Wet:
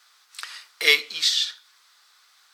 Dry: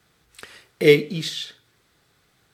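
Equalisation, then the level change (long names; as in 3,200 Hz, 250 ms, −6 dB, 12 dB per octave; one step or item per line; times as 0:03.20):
high-pass with resonance 1,100 Hz, resonance Q 2.4
parametric band 4,900 Hz +11.5 dB 1.4 octaves
high-shelf EQ 9,300 Hz +6 dB
−1.5 dB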